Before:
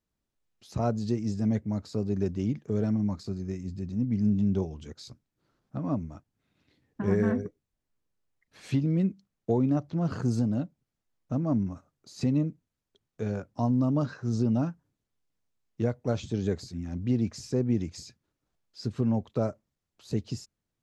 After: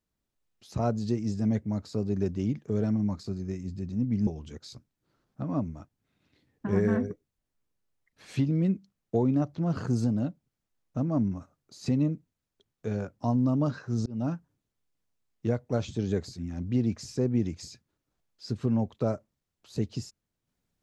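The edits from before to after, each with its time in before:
0:04.27–0:04.62: remove
0:14.41–0:14.67: fade in

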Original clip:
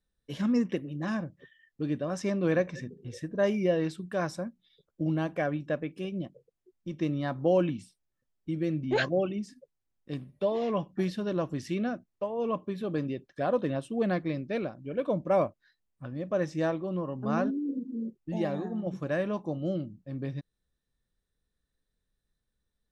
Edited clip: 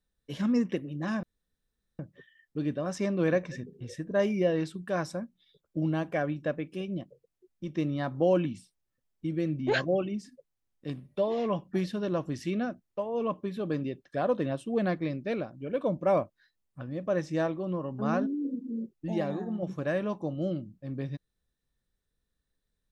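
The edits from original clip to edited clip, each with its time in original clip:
0:01.23: splice in room tone 0.76 s

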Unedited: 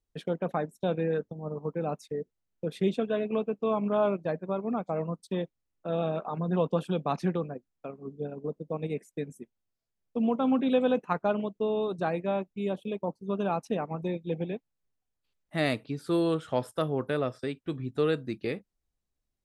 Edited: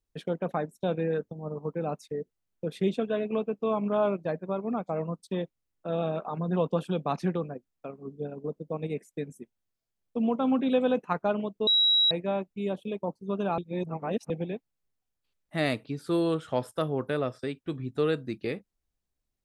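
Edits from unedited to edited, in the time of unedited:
0:11.67–0:12.11: beep over 3,870 Hz −19 dBFS
0:13.58–0:14.30: reverse

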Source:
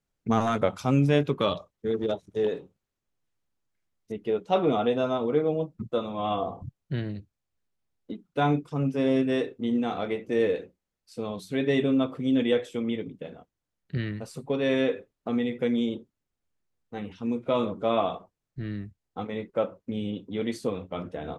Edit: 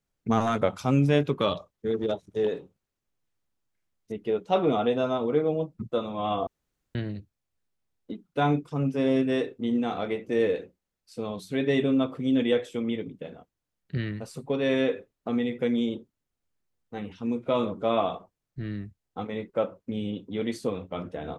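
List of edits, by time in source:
0:06.47–0:06.95: fill with room tone

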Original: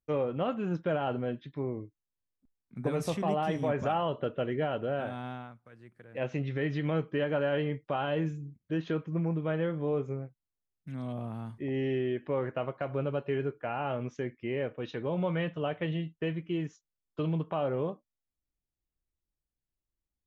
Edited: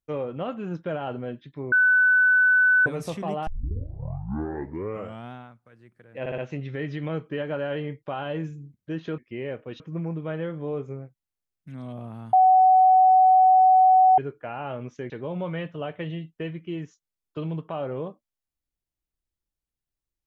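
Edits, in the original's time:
0:01.72–0:02.86: beep over 1,500 Hz −15 dBFS
0:03.47: tape start 1.86 s
0:06.20: stutter 0.06 s, 4 plays
0:11.53–0:13.38: beep over 749 Hz −12.5 dBFS
0:14.30–0:14.92: move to 0:09.00

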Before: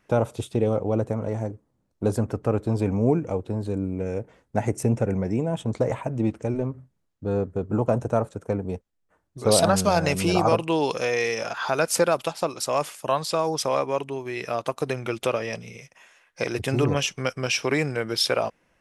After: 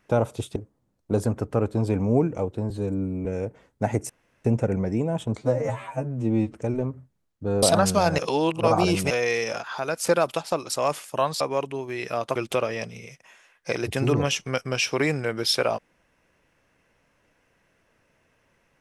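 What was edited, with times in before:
0:00.56–0:01.48: remove
0:03.62–0:03.99: time-stretch 1.5×
0:04.83: splice in room tone 0.35 s
0:05.76–0:06.34: time-stretch 2×
0:07.43–0:09.53: remove
0:10.09–0:11.01: reverse
0:11.51–0:11.97: clip gain −5 dB
0:13.31–0:13.78: remove
0:14.73–0:15.07: remove

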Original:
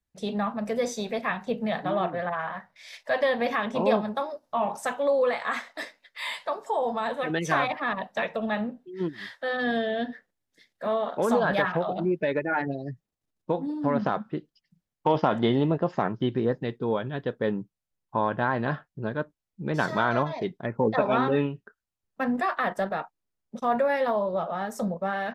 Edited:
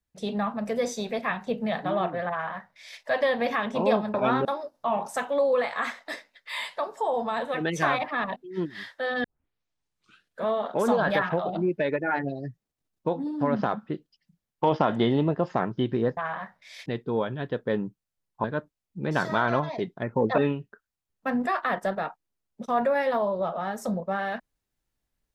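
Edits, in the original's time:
0:02.31–0:03.00: duplicate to 0:16.60
0:08.05–0:08.79: remove
0:09.67: tape start 1.23 s
0:18.18–0:19.07: remove
0:21.01–0:21.32: move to 0:04.14

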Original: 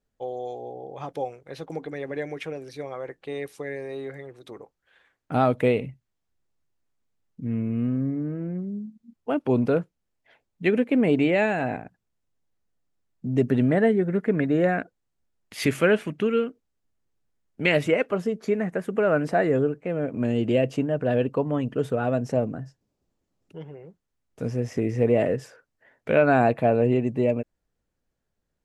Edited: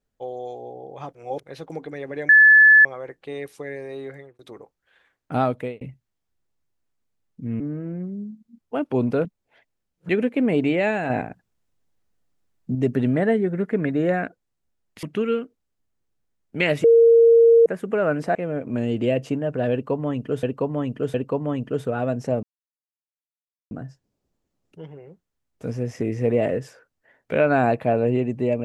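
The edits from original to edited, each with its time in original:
0:01.15–0:01.40: reverse
0:02.29–0:02.85: beep over 1,730 Hz −8 dBFS
0:04.06–0:04.39: fade out equal-power
0:05.41–0:05.81: fade out
0:07.60–0:08.15: remove
0:09.80–0:10.64: reverse
0:11.65–0:13.30: clip gain +5 dB
0:15.58–0:16.08: remove
0:17.89–0:18.71: beep over 462 Hz −9.5 dBFS
0:19.40–0:19.82: remove
0:21.19–0:21.90: repeat, 3 plays
0:22.48: splice in silence 1.28 s

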